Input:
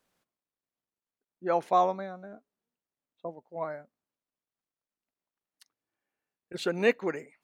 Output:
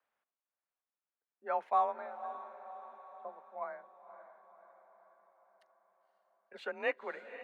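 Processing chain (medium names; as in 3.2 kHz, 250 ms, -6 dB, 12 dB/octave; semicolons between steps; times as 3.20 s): frequency shift +35 Hz; three-band isolator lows -18 dB, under 580 Hz, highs -21 dB, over 2.6 kHz; echo that smears into a reverb 531 ms, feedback 55%, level -12.5 dB; trim -3.5 dB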